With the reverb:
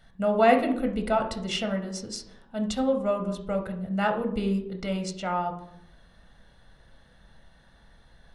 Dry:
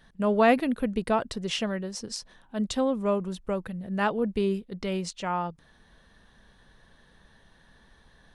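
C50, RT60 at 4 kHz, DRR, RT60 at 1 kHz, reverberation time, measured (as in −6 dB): 9.0 dB, 0.45 s, 4.5 dB, 0.70 s, 0.80 s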